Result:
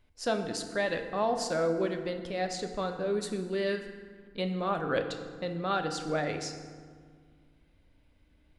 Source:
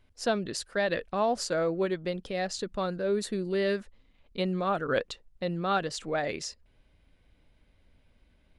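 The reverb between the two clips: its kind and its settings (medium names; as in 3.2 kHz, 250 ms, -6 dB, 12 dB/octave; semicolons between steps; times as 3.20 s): FDN reverb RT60 1.8 s, low-frequency decay 1.5×, high-frequency decay 0.55×, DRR 5.5 dB; trim -2.5 dB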